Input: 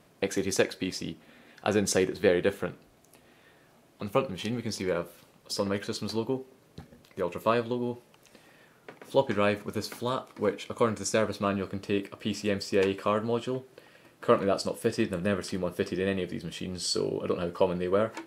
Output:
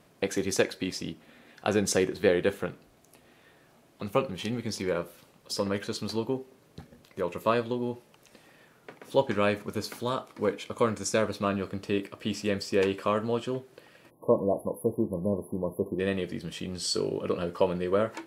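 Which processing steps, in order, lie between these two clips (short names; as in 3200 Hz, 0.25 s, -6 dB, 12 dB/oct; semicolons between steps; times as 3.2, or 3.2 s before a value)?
spectral delete 14.1–15.99, 1100–10000 Hz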